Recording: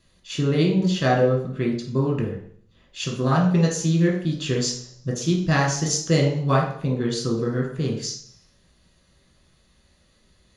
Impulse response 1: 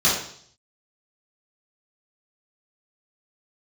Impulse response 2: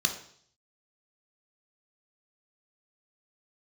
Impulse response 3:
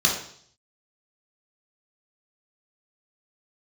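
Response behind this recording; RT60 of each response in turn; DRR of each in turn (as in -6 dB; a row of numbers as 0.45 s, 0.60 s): 3; 0.60 s, 0.60 s, 0.60 s; -9.5 dB, 4.0 dB, -2.0 dB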